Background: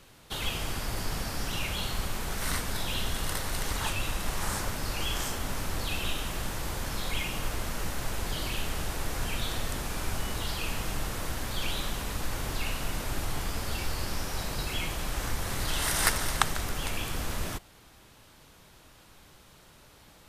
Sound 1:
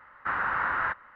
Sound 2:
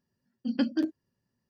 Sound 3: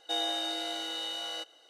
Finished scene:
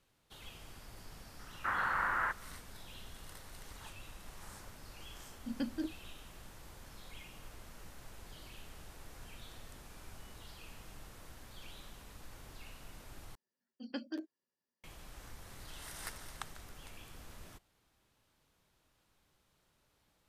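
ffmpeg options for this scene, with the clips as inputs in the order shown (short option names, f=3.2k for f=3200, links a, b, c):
-filter_complex "[2:a]asplit=2[a][b];[0:a]volume=-19.5dB[c];[b]highpass=380[d];[c]asplit=2[e][f];[e]atrim=end=13.354[g];[d]atrim=end=1.49,asetpts=PTS-STARTPTS,volume=-8.5dB[h];[f]atrim=start=14.836[i];[1:a]atrim=end=1.15,asetpts=PTS-STARTPTS,volume=-5.5dB,afade=t=in:d=0.004:c=hsin,afade=t=out:st=1.146:d=0.004:c=hsin,adelay=1390[j];[a]atrim=end=1.49,asetpts=PTS-STARTPTS,volume=-10.5dB,afade=t=in:d=0.004:c=hsin,afade=t=out:st=1.486:d=0.004:c=hsin,adelay=220941S[k];[g][h]acrossfade=d=0.004:c1=hsin:c2=hsin[l];[l][i]acrossfade=d=0.004:c1=hsin:c2=hsin[m];[m][j][k]amix=inputs=3:normalize=0"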